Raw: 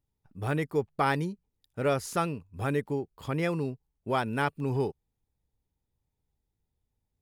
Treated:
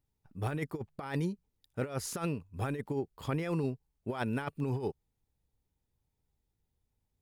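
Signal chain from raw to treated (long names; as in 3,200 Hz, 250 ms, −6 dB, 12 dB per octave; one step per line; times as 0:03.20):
compressor whose output falls as the input rises −30 dBFS, ratio −0.5
level −2.5 dB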